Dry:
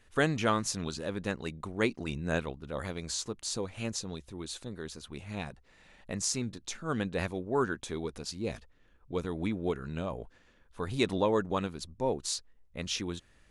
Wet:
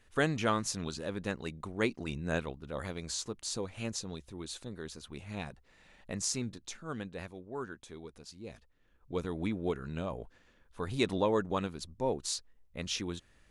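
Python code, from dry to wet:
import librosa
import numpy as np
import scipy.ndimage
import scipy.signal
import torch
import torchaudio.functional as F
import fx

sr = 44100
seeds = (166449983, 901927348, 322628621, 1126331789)

y = fx.gain(x, sr, db=fx.line((6.46, -2.0), (7.28, -11.0), (8.51, -11.0), (9.14, -1.5)))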